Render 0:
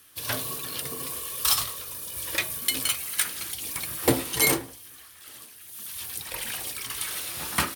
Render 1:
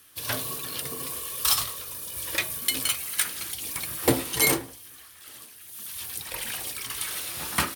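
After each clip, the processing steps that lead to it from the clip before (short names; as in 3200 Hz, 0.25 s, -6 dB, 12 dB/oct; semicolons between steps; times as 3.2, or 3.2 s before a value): nothing audible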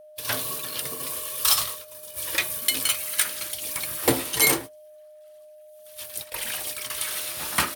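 low shelf 360 Hz -5.5 dB; gate -35 dBFS, range -22 dB; whine 610 Hz -48 dBFS; gain +2.5 dB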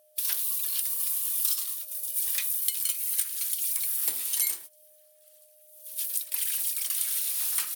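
pre-emphasis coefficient 0.97; compressor 5:1, threshold -31 dBFS, peak gain reduction 16 dB; gain +5.5 dB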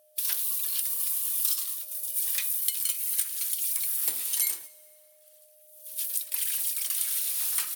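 plate-style reverb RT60 2.4 s, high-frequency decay 0.75×, DRR 18.5 dB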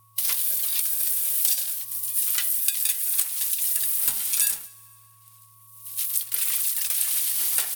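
ring modulator 500 Hz; gain +7.5 dB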